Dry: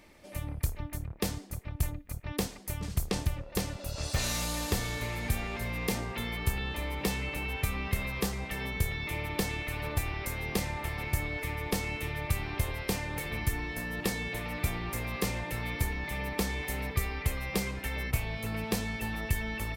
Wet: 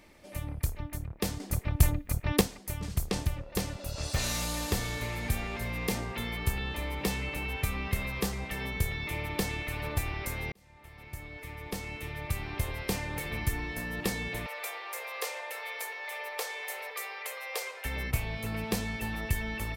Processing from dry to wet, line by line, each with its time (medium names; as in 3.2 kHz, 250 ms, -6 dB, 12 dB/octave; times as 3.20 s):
1.40–2.41 s: gain +8 dB
10.52–12.94 s: fade in
14.46–17.85 s: elliptic high-pass 480 Hz, stop band 70 dB